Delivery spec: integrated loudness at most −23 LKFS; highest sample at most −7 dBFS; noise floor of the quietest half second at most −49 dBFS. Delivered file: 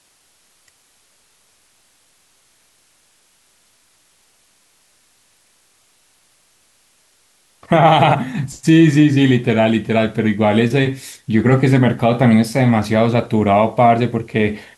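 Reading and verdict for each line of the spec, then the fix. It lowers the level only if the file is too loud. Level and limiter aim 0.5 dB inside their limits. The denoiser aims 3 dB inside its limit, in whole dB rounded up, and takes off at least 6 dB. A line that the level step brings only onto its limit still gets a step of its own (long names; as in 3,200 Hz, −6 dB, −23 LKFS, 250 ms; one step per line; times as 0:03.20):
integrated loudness −14.5 LKFS: out of spec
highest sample −2.5 dBFS: out of spec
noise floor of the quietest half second −57 dBFS: in spec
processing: level −9 dB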